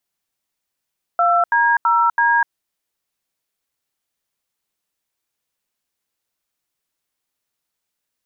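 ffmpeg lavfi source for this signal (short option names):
-f lavfi -i "aevalsrc='0.178*clip(min(mod(t,0.33),0.249-mod(t,0.33))/0.002,0,1)*(eq(floor(t/0.33),0)*(sin(2*PI*697*mod(t,0.33))+sin(2*PI*1336*mod(t,0.33)))+eq(floor(t/0.33),1)*(sin(2*PI*941*mod(t,0.33))+sin(2*PI*1633*mod(t,0.33)))+eq(floor(t/0.33),2)*(sin(2*PI*941*mod(t,0.33))+sin(2*PI*1336*mod(t,0.33)))+eq(floor(t/0.33),3)*(sin(2*PI*941*mod(t,0.33))+sin(2*PI*1633*mod(t,0.33))))':d=1.32:s=44100"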